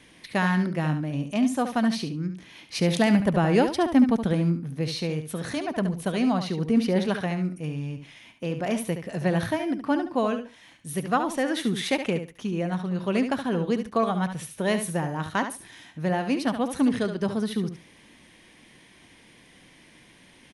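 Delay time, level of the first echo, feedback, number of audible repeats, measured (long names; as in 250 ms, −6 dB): 71 ms, −9.0 dB, 18%, 2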